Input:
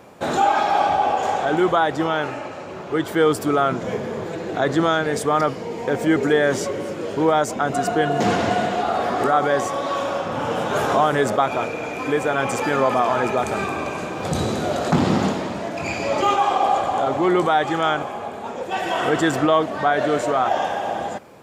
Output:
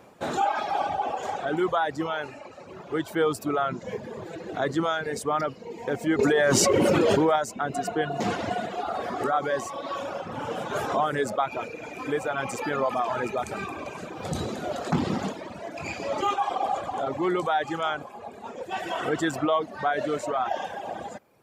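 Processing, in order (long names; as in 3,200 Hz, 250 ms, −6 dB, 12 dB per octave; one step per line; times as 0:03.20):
reverb reduction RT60 1.1 s
0:06.19–0:07.36: envelope flattener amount 100%
level −6 dB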